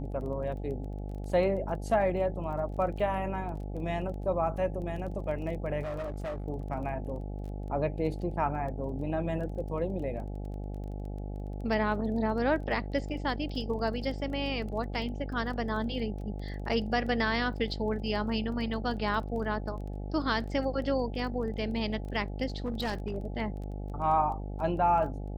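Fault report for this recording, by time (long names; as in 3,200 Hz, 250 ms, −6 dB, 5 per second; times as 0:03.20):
mains buzz 50 Hz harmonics 17 −37 dBFS
surface crackle 16 per second −40 dBFS
0:05.82–0:06.46: clipping −32 dBFS
0:22.64–0:23.16: clipping −27.5 dBFS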